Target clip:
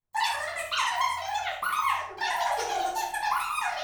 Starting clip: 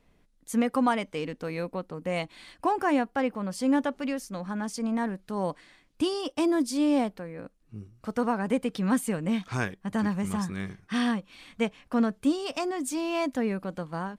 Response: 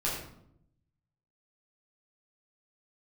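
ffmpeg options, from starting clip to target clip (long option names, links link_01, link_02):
-filter_complex "[0:a]agate=range=-26dB:threshold=-53dB:ratio=16:detection=peak,asetrate=163170,aresample=44100[link_01];[1:a]atrim=start_sample=2205,asetrate=52920,aresample=44100[link_02];[link_01][link_02]afir=irnorm=-1:irlink=0,volume=-5.5dB"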